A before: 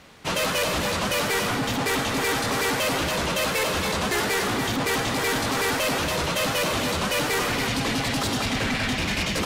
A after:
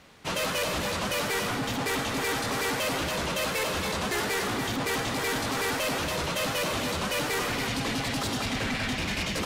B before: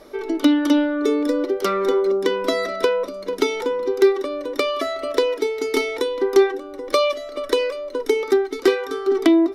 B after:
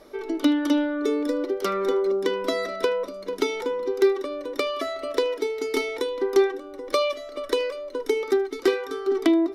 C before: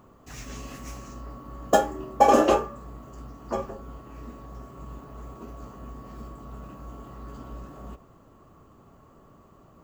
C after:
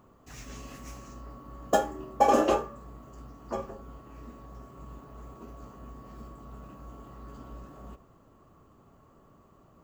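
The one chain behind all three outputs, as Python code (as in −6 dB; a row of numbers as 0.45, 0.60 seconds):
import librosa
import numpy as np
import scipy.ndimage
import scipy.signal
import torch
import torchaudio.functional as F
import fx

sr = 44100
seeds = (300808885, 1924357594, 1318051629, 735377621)

y = x + 10.0 ** (-22.0 / 20.0) * np.pad(x, (int(77 * sr / 1000.0), 0))[:len(x)]
y = F.gain(torch.from_numpy(y), -4.5).numpy()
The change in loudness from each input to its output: −4.5, −4.5, −4.5 LU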